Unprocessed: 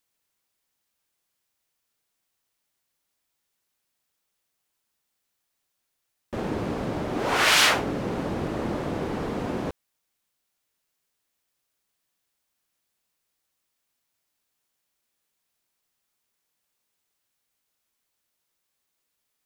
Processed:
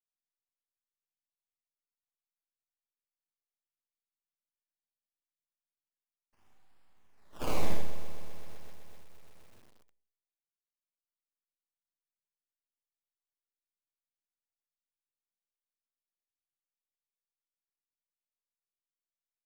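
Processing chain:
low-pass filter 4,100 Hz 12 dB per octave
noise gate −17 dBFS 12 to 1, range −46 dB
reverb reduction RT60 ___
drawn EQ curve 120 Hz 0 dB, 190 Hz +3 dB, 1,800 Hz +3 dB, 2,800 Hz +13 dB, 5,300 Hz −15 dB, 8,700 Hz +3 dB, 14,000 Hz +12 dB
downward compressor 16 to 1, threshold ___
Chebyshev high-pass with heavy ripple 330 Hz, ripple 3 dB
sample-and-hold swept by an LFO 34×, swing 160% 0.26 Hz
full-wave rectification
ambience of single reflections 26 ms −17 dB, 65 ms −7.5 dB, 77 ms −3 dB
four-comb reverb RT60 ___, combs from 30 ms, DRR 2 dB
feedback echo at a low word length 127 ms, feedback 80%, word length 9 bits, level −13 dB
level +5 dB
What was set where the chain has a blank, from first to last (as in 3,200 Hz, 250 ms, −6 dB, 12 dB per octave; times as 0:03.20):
1.6 s, −35 dBFS, 0.55 s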